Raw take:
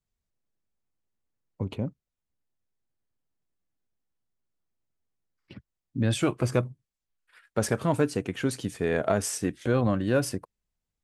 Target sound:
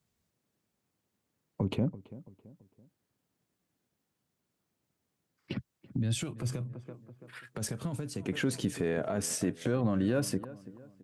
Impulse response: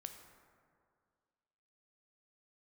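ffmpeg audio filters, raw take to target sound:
-filter_complex "[0:a]highpass=130,acompressor=threshold=-39dB:ratio=3,asplit=2[link_01][link_02];[link_02]adelay=333,lowpass=frequency=1700:poles=1,volume=-19dB,asplit=2[link_03][link_04];[link_04]adelay=333,lowpass=frequency=1700:poles=1,volume=0.43,asplit=2[link_05][link_06];[link_06]adelay=333,lowpass=frequency=1700:poles=1,volume=0.43[link_07];[link_01][link_03][link_05][link_07]amix=inputs=4:normalize=0,alimiter=level_in=8dB:limit=-24dB:level=0:latency=1:release=28,volume=-8dB,asettb=1/sr,asplit=3[link_08][link_09][link_10];[link_08]atrim=end=5.564[link_11];[link_09]atrim=start=5.56:end=8.26,asetpts=PTS-STARTPTS,afade=type=in:duration=0.004:curve=qsin,afade=type=out:start_time=2.696:duration=0.004:curve=qsin,acrossover=split=180|3000[link_12][link_13][link_14];[link_13]acompressor=threshold=-51dB:ratio=6[link_15];[link_12][link_15][link_14]amix=inputs=3:normalize=0[link_16];[link_10]atrim=start=8.256[link_17];[link_11][link_16]acrossfade=duration=0.004:curve1=hsin:curve2=qsin[link_18];[link_18][link_17]acrossfade=duration=0.004:curve1=qsin:curve2=hsin,lowshelf=frequency=320:gain=6.5,volume=8.5dB"

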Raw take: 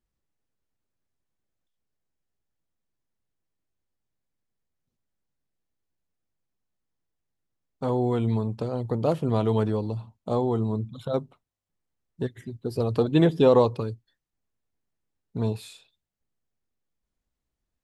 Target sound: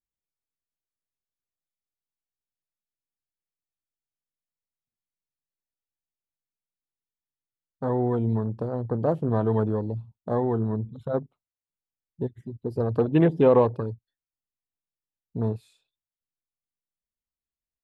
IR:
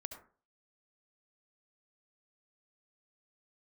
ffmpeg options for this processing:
-af "afwtdn=0.0141"

